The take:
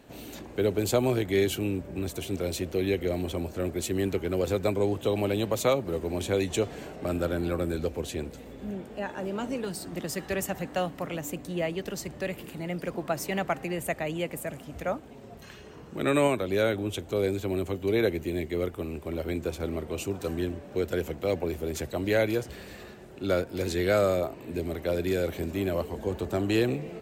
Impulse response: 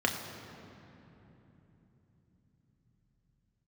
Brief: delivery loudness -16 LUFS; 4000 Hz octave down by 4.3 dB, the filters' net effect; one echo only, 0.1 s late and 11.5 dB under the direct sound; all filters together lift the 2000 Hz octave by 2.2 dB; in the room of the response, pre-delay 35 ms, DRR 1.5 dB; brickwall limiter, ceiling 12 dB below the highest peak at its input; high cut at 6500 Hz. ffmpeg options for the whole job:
-filter_complex "[0:a]lowpass=6.5k,equalizer=f=2k:t=o:g=4.5,equalizer=f=4k:t=o:g=-7,alimiter=limit=-24dB:level=0:latency=1,aecho=1:1:100:0.266,asplit=2[a][b];[1:a]atrim=start_sample=2205,adelay=35[c];[b][c]afir=irnorm=-1:irlink=0,volume=-11.5dB[d];[a][d]amix=inputs=2:normalize=0,volume=15.5dB"

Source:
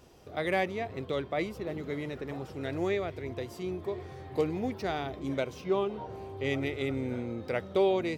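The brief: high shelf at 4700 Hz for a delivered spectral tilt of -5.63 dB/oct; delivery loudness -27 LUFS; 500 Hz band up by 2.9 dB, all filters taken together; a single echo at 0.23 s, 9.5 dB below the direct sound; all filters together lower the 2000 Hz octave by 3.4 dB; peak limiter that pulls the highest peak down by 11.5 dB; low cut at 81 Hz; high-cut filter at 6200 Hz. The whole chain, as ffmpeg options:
-af "highpass=81,lowpass=6.2k,equalizer=f=500:t=o:g=4,equalizer=f=2k:t=o:g=-5.5,highshelf=f=4.7k:g=8,alimiter=level_in=1dB:limit=-24dB:level=0:latency=1,volume=-1dB,aecho=1:1:230:0.335,volume=8dB"

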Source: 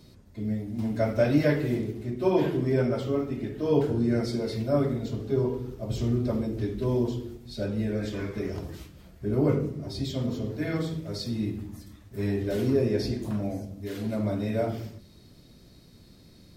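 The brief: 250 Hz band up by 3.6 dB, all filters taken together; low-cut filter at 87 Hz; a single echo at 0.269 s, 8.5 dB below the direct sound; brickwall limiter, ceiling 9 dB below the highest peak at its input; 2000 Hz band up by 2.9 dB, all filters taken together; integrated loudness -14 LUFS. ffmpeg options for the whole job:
-af "highpass=87,equalizer=f=250:t=o:g=4.5,equalizer=f=2k:t=o:g=3.5,alimiter=limit=-17.5dB:level=0:latency=1,aecho=1:1:269:0.376,volume=14dB"

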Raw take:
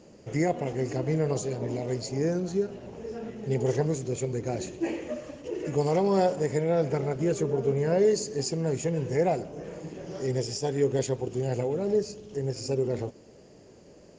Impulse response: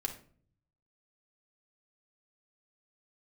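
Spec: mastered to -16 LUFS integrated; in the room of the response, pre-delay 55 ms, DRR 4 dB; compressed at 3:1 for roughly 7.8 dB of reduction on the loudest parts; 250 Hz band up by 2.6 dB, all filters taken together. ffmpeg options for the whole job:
-filter_complex "[0:a]equalizer=f=250:t=o:g=4,acompressor=threshold=-28dB:ratio=3,asplit=2[a][b];[1:a]atrim=start_sample=2205,adelay=55[c];[b][c]afir=irnorm=-1:irlink=0,volume=-5.5dB[d];[a][d]amix=inputs=2:normalize=0,volume=15dB"

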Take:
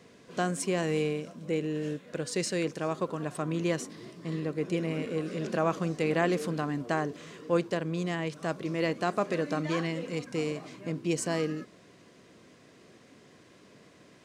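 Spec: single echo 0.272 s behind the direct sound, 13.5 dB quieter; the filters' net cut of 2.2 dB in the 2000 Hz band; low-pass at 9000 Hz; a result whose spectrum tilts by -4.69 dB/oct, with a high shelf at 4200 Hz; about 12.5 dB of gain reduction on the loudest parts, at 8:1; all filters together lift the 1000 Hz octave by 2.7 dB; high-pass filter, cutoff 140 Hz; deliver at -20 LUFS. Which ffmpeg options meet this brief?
-af "highpass=140,lowpass=9k,equalizer=f=1k:t=o:g=4.5,equalizer=f=2k:t=o:g=-6,highshelf=f=4.2k:g=8.5,acompressor=threshold=-33dB:ratio=8,aecho=1:1:272:0.211,volume=18.5dB"

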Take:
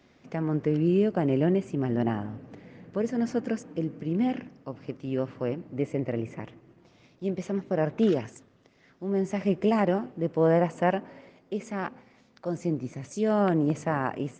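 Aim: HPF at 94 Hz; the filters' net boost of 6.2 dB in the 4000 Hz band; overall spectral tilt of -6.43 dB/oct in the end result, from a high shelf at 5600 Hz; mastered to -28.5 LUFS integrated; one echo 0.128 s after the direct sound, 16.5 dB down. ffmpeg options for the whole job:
-af "highpass=94,equalizer=f=4k:t=o:g=6.5,highshelf=f=5.6k:g=8,aecho=1:1:128:0.15,volume=-0.5dB"

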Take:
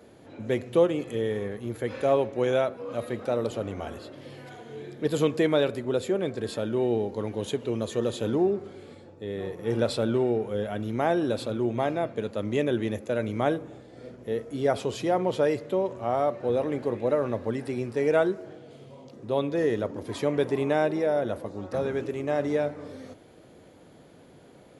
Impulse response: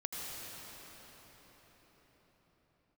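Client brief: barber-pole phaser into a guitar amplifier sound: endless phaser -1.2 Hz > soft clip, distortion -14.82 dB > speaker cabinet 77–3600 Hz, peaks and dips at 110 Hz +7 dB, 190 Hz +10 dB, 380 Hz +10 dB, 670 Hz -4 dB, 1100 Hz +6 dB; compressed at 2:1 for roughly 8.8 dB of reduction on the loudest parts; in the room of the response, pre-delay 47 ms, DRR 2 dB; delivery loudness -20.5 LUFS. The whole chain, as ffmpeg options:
-filter_complex "[0:a]acompressor=threshold=-33dB:ratio=2,asplit=2[a][b];[1:a]atrim=start_sample=2205,adelay=47[c];[b][c]afir=irnorm=-1:irlink=0,volume=-4.5dB[d];[a][d]amix=inputs=2:normalize=0,asplit=2[e][f];[f]afreqshift=-1.2[g];[e][g]amix=inputs=2:normalize=1,asoftclip=threshold=-28dB,highpass=77,equalizer=f=110:t=q:w=4:g=7,equalizer=f=190:t=q:w=4:g=10,equalizer=f=380:t=q:w=4:g=10,equalizer=f=670:t=q:w=4:g=-4,equalizer=f=1.1k:t=q:w=4:g=6,lowpass=f=3.6k:w=0.5412,lowpass=f=3.6k:w=1.3066,volume=11.5dB"

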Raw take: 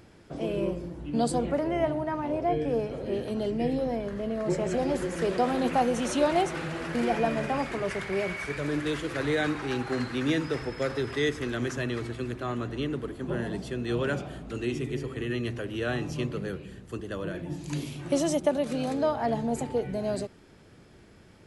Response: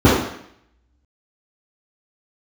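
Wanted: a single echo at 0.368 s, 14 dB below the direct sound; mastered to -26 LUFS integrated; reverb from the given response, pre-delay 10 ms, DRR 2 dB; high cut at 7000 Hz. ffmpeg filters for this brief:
-filter_complex "[0:a]lowpass=7k,aecho=1:1:368:0.2,asplit=2[a][b];[1:a]atrim=start_sample=2205,adelay=10[c];[b][c]afir=irnorm=-1:irlink=0,volume=-29dB[d];[a][d]amix=inputs=2:normalize=0,volume=-4dB"

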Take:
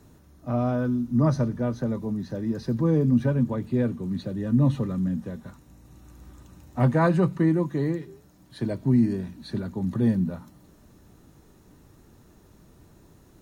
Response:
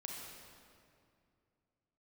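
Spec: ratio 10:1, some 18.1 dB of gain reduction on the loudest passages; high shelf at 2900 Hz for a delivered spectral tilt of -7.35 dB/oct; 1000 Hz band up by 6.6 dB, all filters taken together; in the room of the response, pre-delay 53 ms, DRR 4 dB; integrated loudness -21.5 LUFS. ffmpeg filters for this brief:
-filter_complex "[0:a]equalizer=f=1k:t=o:g=8.5,highshelf=f=2.9k:g=-3,acompressor=threshold=-34dB:ratio=10,asplit=2[a][b];[1:a]atrim=start_sample=2205,adelay=53[c];[b][c]afir=irnorm=-1:irlink=0,volume=-2.5dB[d];[a][d]amix=inputs=2:normalize=0,volume=16dB"

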